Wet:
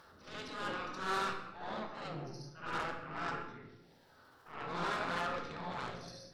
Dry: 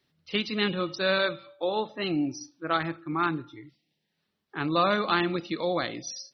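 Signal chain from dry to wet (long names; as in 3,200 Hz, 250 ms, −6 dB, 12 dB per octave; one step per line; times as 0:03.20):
gate on every frequency bin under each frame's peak −10 dB weak
high shelf with overshoot 1,800 Hz −8.5 dB, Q 3
transient designer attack −8 dB, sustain +6 dB
upward compression, threshold −37 dBFS
harmonic generator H 8 −18 dB, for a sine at −20 dBFS
backwards echo 70 ms −6.5 dB
convolution reverb RT60 0.95 s, pre-delay 7 ms, DRR 4 dB
highs frequency-modulated by the lows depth 0.15 ms
level −6 dB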